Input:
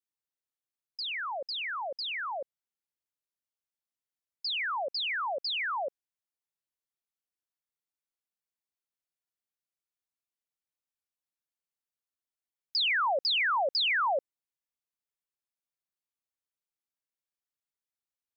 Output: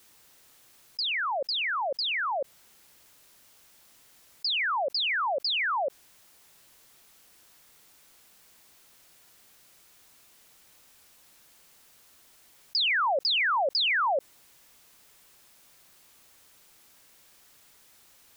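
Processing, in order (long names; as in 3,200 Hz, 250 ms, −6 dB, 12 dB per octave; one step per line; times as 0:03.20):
envelope flattener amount 50%
level +2 dB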